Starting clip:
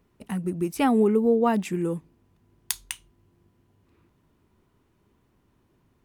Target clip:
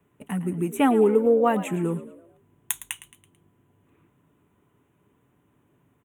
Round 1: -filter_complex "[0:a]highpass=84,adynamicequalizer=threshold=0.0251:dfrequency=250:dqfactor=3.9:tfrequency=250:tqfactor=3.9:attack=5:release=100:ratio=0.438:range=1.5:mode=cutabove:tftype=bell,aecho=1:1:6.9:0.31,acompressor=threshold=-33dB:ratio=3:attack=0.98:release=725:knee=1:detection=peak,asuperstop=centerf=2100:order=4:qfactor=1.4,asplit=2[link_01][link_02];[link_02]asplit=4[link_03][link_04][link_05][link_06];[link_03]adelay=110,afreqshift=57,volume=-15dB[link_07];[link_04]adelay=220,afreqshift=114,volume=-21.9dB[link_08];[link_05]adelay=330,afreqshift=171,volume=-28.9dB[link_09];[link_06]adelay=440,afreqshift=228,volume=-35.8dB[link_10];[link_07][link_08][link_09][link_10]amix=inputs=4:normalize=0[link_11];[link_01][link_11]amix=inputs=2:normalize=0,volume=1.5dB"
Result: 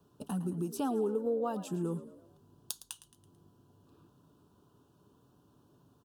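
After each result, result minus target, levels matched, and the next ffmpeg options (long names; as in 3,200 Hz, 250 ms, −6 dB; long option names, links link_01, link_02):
downward compressor: peak gain reduction +14.5 dB; 2,000 Hz band −8.5 dB
-filter_complex "[0:a]highpass=84,adynamicequalizer=threshold=0.0251:dfrequency=250:dqfactor=3.9:tfrequency=250:tqfactor=3.9:attack=5:release=100:ratio=0.438:range=1.5:mode=cutabove:tftype=bell,asuperstop=centerf=2100:order=4:qfactor=1.4,aecho=1:1:6.9:0.31,asplit=2[link_01][link_02];[link_02]asplit=4[link_03][link_04][link_05][link_06];[link_03]adelay=110,afreqshift=57,volume=-15dB[link_07];[link_04]adelay=220,afreqshift=114,volume=-21.9dB[link_08];[link_05]adelay=330,afreqshift=171,volume=-28.9dB[link_09];[link_06]adelay=440,afreqshift=228,volume=-35.8dB[link_10];[link_07][link_08][link_09][link_10]amix=inputs=4:normalize=0[link_11];[link_01][link_11]amix=inputs=2:normalize=0,volume=1.5dB"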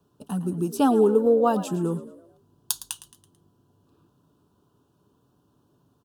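2,000 Hz band −8.0 dB
-filter_complex "[0:a]highpass=84,adynamicequalizer=threshold=0.0251:dfrequency=250:dqfactor=3.9:tfrequency=250:tqfactor=3.9:attack=5:release=100:ratio=0.438:range=1.5:mode=cutabove:tftype=bell,asuperstop=centerf=4800:order=4:qfactor=1.4,aecho=1:1:6.9:0.31,asplit=2[link_01][link_02];[link_02]asplit=4[link_03][link_04][link_05][link_06];[link_03]adelay=110,afreqshift=57,volume=-15dB[link_07];[link_04]adelay=220,afreqshift=114,volume=-21.9dB[link_08];[link_05]adelay=330,afreqshift=171,volume=-28.9dB[link_09];[link_06]adelay=440,afreqshift=228,volume=-35.8dB[link_10];[link_07][link_08][link_09][link_10]amix=inputs=4:normalize=0[link_11];[link_01][link_11]amix=inputs=2:normalize=0,volume=1.5dB"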